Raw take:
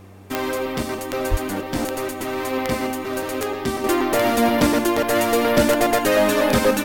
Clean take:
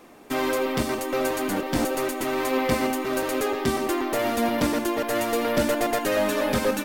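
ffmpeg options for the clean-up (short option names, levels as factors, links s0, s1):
-filter_complex "[0:a]adeclick=t=4,bandreject=f=96.1:t=h:w=4,bandreject=f=192.2:t=h:w=4,bandreject=f=288.3:t=h:w=4,bandreject=f=384.4:t=h:w=4,bandreject=f=480.5:t=h:w=4,asplit=3[s0][s1][s2];[s0]afade=t=out:st=1.3:d=0.02[s3];[s1]highpass=f=140:w=0.5412,highpass=f=140:w=1.3066,afade=t=in:st=1.3:d=0.02,afade=t=out:st=1.42:d=0.02[s4];[s2]afade=t=in:st=1.42:d=0.02[s5];[s3][s4][s5]amix=inputs=3:normalize=0,asetnsamples=n=441:p=0,asendcmd='3.84 volume volume -6dB',volume=1"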